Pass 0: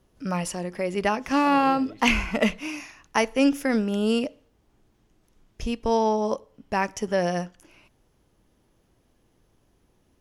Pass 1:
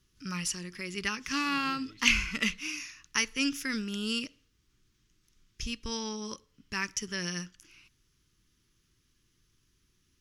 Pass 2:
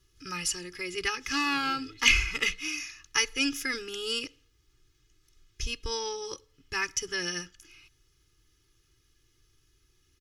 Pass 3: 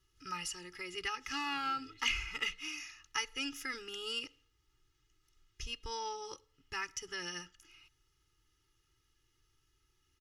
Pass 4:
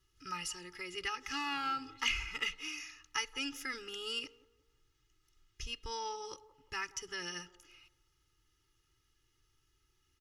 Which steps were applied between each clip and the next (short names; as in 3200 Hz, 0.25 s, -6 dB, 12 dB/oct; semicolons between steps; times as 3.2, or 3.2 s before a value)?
EQ curve 150 Hz 0 dB, 230 Hz -5 dB, 370 Hz -5 dB, 680 Hz -25 dB, 1200 Hz 0 dB, 5800 Hz +11 dB, 8900 Hz +4 dB; gain -6 dB
comb 2.4 ms, depth 97%
compressor 1.5:1, threshold -34 dBFS, peak gain reduction 7 dB; small resonant body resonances 880/1300/1900/2800 Hz, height 10 dB, ringing for 25 ms; gain -8.5 dB
band-limited delay 0.178 s, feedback 36%, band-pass 580 Hz, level -16.5 dB